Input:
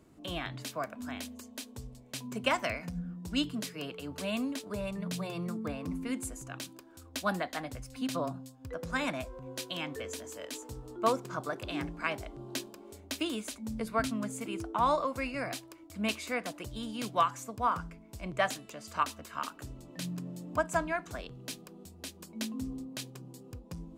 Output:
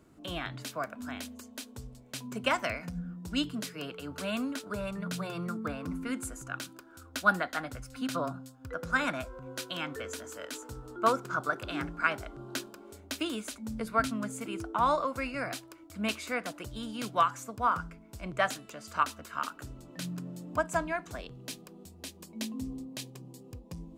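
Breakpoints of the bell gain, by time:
bell 1400 Hz 0.31 oct
3.56 s +5.5 dB
4.38 s +14 dB
12.62 s +14 dB
13.04 s +7 dB
20.23 s +7 dB
20.86 s -1 dB
21.92 s -1 dB
22.48 s -8 dB

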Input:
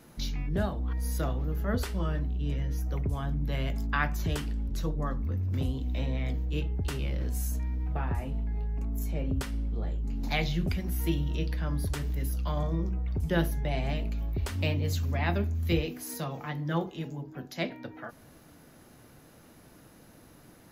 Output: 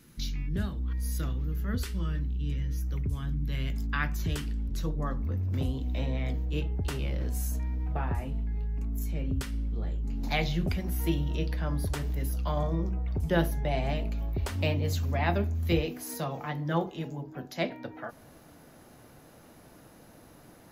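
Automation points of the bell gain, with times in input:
bell 700 Hz 1.3 oct
3.5 s -15 dB
4.09 s -7.5 dB
4.59 s -7.5 dB
5.24 s +2 dB
8.1 s +2 dB
8.5 s -7 dB
9.52 s -7 dB
10.56 s +4 dB

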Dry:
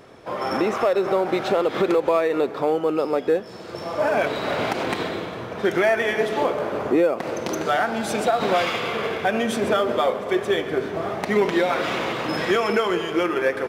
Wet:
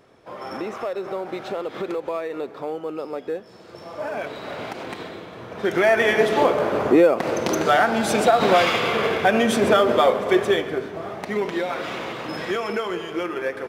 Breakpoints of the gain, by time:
5.25 s -8 dB
6.02 s +4 dB
10.41 s +4 dB
10.92 s -5 dB

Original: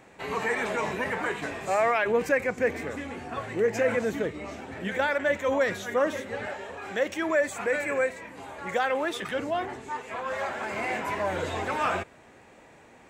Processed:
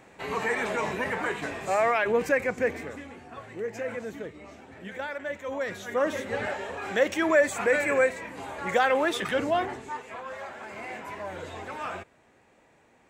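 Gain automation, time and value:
2.59 s 0 dB
3.22 s -8.5 dB
5.47 s -8.5 dB
6.34 s +3.5 dB
9.56 s +3.5 dB
10.41 s -8 dB

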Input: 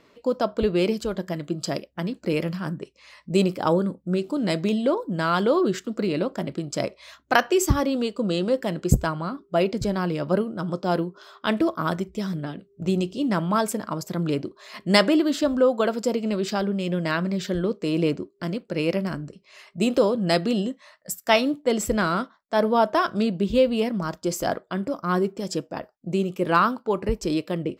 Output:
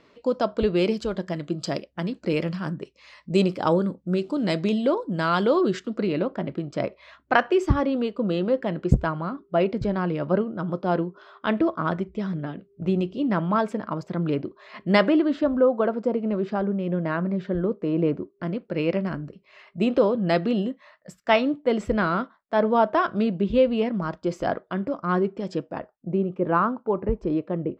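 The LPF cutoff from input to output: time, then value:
5.68 s 5800 Hz
6.29 s 2500 Hz
15.07 s 2500 Hz
15.68 s 1400 Hz
18 s 1400 Hz
18.8 s 2700 Hz
25.69 s 2700 Hz
26.13 s 1200 Hz

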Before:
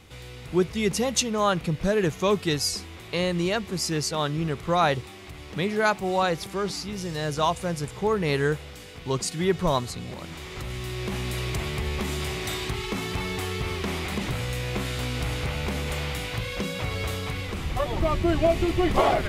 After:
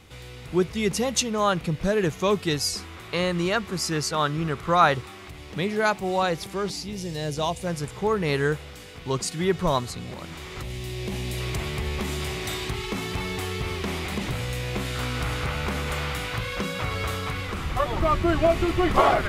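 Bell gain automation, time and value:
bell 1300 Hz 0.83 oct
+1 dB
from 2.77 s +7.5 dB
from 5.28 s -0.5 dB
from 6.7 s -10 dB
from 7.67 s +2 dB
from 10.63 s -8.5 dB
from 11.4 s 0 dB
from 14.95 s +7.5 dB

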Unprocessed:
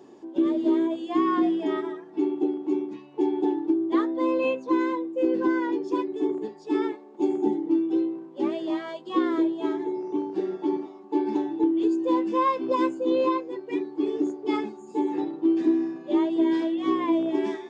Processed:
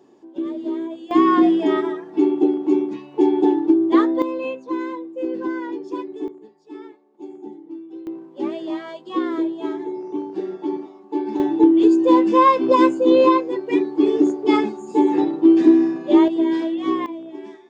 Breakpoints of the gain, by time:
-3.5 dB
from 1.11 s +8 dB
from 4.22 s -2 dB
from 6.28 s -12 dB
from 8.07 s +1 dB
from 11.4 s +9.5 dB
from 16.28 s +3 dB
from 17.06 s -9.5 dB

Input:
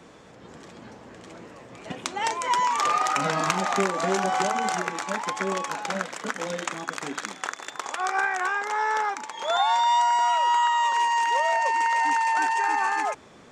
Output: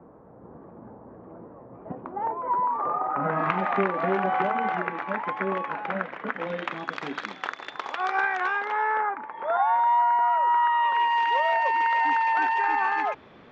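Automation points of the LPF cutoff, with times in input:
LPF 24 dB/oct
3.08 s 1100 Hz
3.51 s 2400 Hz
6.26 s 2400 Hz
6.97 s 4000 Hz
8.55 s 4000 Hz
9.11 s 1800 Hz
10.46 s 1800 Hz
11.22 s 3600 Hz

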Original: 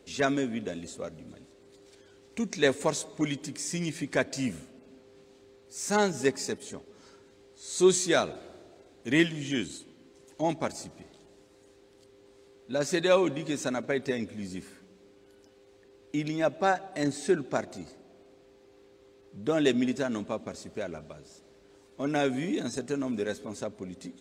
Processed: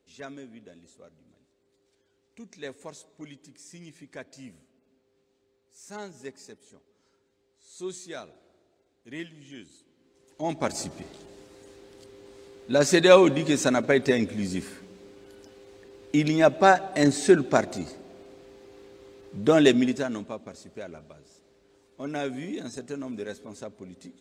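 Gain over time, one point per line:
9.7 s -14.5 dB
10.43 s -2.5 dB
10.8 s +8 dB
19.55 s +8 dB
20.39 s -4 dB

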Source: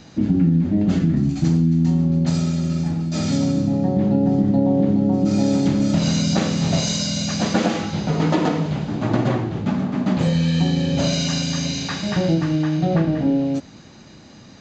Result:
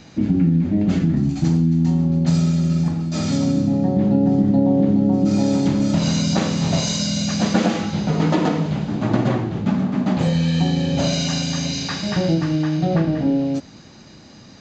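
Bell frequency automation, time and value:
bell +4 dB 0.33 oct
2300 Hz
from 1.03 s 850 Hz
from 2.25 s 170 Hz
from 2.88 s 1100 Hz
from 3.47 s 240 Hz
from 5.37 s 980 Hz
from 6.99 s 200 Hz
from 10.06 s 770 Hz
from 11.72 s 5000 Hz

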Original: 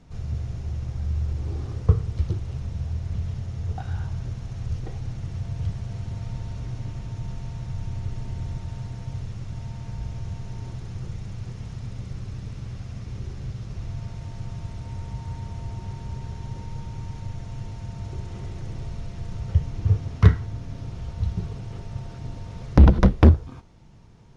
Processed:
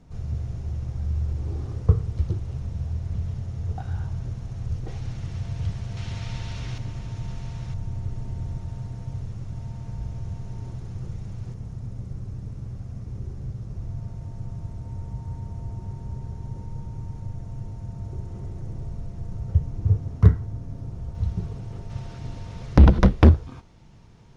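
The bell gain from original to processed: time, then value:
bell 3100 Hz 2.6 oct
-5 dB
from 4.88 s +3 dB
from 5.97 s +12 dB
from 6.78 s +2.5 dB
from 7.74 s -7.5 dB
from 11.54 s -14 dB
from 21.15 s -6 dB
from 21.9 s +2 dB

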